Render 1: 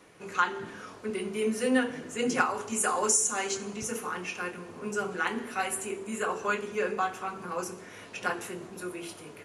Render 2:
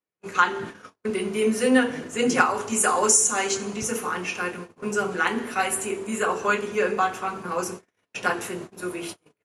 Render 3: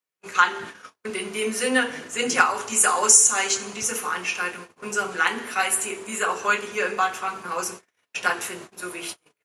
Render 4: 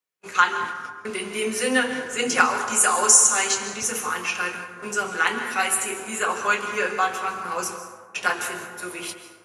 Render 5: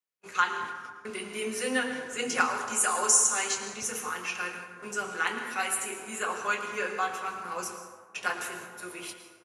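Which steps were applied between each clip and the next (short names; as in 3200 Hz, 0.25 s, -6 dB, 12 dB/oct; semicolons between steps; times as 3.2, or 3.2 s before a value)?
gate -41 dBFS, range -43 dB; gain +6.5 dB
tilt shelf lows -6.5 dB, about 650 Hz; gain -2 dB
plate-style reverb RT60 1.5 s, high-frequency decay 0.4×, pre-delay 0.12 s, DRR 8.5 dB
outdoor echo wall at 19 m, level -13 dB; gain -7.5 dB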